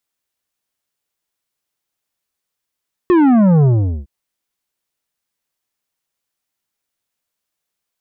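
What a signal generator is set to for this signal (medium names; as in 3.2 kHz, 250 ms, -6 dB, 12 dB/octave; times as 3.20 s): sub drop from 370 Hz, over 0.96 s, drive 10 dB, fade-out 0.42 s, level -9 dB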